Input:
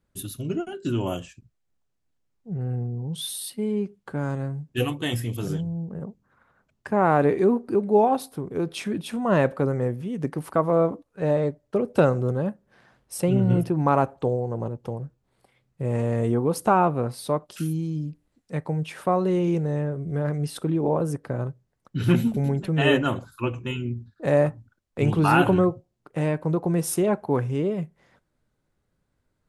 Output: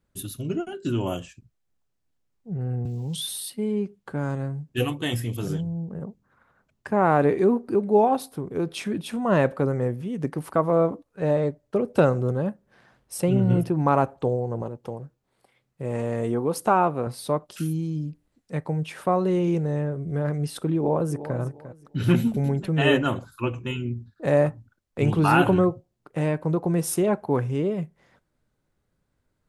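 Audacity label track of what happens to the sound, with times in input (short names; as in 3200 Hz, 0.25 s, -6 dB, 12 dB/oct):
2.850000	3.410000	three-band squash depth 70%
14.620000	17.070000	low shelf 150 Hz -9.5 dB
20.760000	21.370000	echo throw 0.35 s, feedback 25%, level -13 dB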